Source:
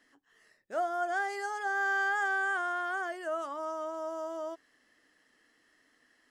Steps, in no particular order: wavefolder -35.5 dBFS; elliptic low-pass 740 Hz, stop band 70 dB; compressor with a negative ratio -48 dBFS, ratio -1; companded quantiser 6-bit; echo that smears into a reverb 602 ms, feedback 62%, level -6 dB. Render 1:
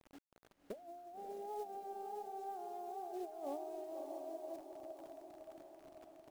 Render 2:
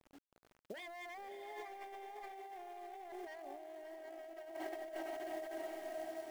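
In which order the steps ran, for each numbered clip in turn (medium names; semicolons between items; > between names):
elliptic low-pass > companded quantiser > compressor with a negative ratio > wavefolder > echo that smears into a reverb; elliptic low-pass > wavefolder > echo that smears into a reverb > companded quantiser > compressor with a negative ratio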